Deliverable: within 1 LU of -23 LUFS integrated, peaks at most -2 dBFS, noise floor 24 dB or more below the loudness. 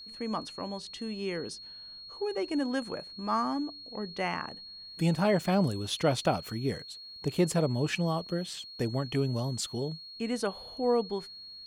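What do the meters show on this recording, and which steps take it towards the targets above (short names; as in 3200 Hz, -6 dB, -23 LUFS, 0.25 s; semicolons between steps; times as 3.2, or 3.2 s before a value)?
steady tone 4300 Hz; tone level -44 dBFS; loudness -31.5 LUFS; peak -13.5 dBFS; loudness target -23.0 LUFS
-> notch 4300 Hz, Q 30; gain +8.5 dB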